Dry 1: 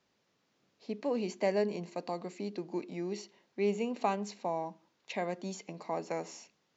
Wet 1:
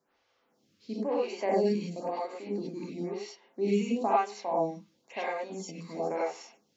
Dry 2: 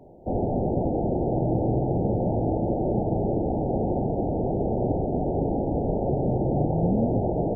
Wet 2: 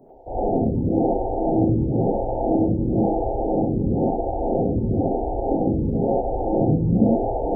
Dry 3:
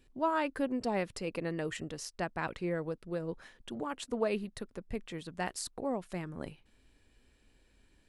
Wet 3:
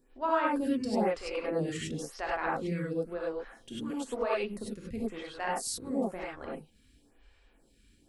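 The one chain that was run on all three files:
non-linear reverb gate 0.12 s rising, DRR -5 dB; photocell phaser 0.99 Hz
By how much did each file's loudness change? +4.0, +3.5, +3.5 LU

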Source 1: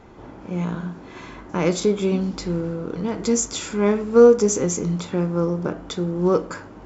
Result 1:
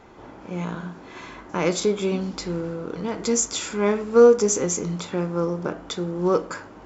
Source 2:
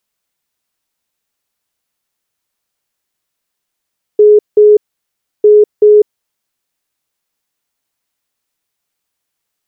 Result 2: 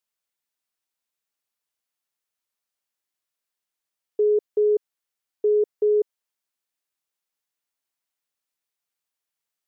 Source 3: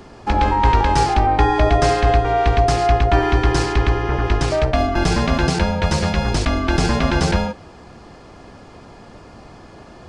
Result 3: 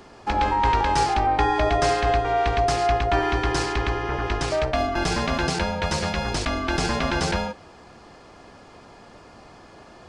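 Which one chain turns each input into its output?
low shelf 320 Hz -7.5 dB; match loudness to -23 LUFS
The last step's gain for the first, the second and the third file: +1.0, -11.0, -2.5 dB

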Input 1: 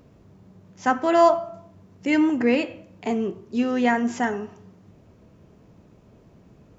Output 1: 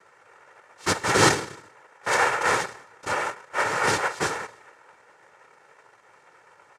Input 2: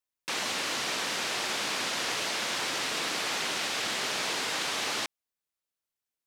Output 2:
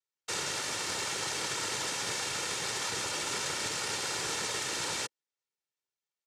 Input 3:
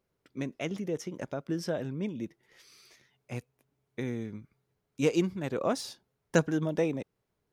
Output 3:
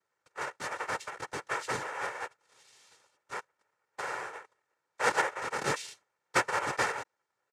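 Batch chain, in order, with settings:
ring modulator 1000 Hz; noise vocoder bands 3; comb 2.2 ms, depth 44%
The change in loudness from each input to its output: -1.0, -2.5, -0.5 LU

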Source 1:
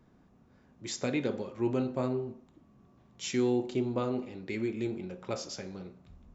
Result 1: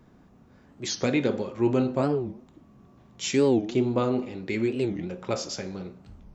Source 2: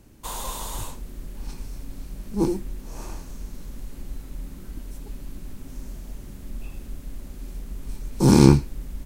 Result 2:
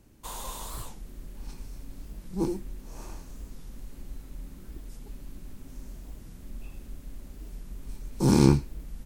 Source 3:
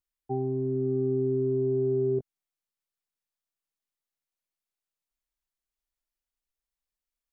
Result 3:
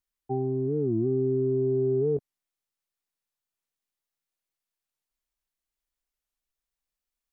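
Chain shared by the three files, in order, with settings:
record warp 45 rpm, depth 250 cents; match loudness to -27 LUFS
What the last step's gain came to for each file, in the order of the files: +6.5, -6.0, +1.0 dB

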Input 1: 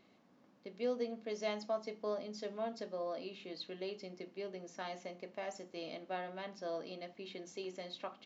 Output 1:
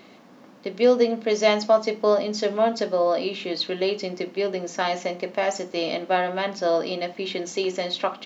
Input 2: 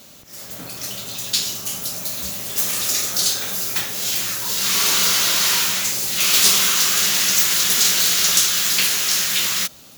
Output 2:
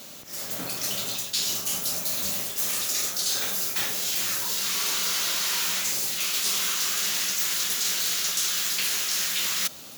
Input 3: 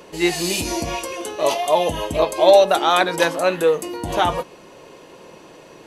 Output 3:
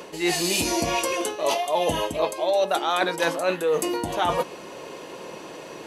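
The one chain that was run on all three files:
low shelf 100 Hz -12 dB; reverse; compressor 6:1, threshold -26 dBFS; reverse; match loudness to -24 LUFS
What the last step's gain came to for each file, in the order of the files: +19.0, +2.0, +5.5 dB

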